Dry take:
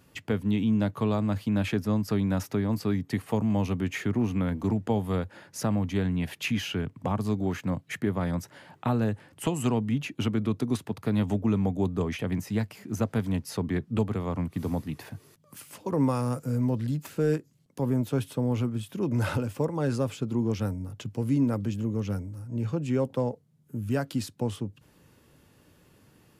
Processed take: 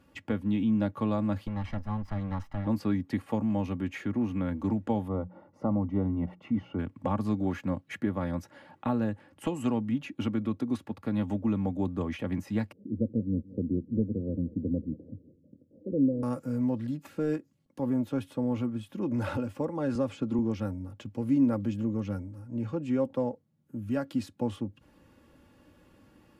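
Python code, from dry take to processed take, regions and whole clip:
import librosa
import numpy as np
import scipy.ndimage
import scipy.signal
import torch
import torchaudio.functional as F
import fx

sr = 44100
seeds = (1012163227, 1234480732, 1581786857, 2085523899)

y = fx.chain(x, sr, fx.lower_of_two(delay_ms=1.0),
    fx.lowpass(hz=1400.0, slope=6),
    fx.peak_eq(hz=350.0, db=-13.0, octaves=1.6), at=(1.47, 2.67))
y = fx.chain(y, sr, fx.savgol(points=65),
    fx.hum_notches(base_hz=60, count=3), at=(5.08, 6.79))
y = fx.chain(y, sr, fx.ellip_lowpass(hz=500.0, order=4, stop_db=50),
    fx.echo_feedback(ms=180, feedback_pct=55, wet_db=-20.0), at=(12.72, 16.23))
y = fx.chain(y, sr, fx.lowpass(hz=10000.0, slope=12),
    fx.band_squash(depth_pct=70), at=(19.95, 20.39))
y = fx.high_shelf(y, sr, hz=3800.0, db=-11.5)
y = y + 0.52 * np.pad(y, (int(3.6 * sr / 1000.0), 0))[:len(y)]
y = fx.rider(y, sr, range_db=10, speed_s=2.0)
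y = y * 10.0 ** (-3.0 / 20.0)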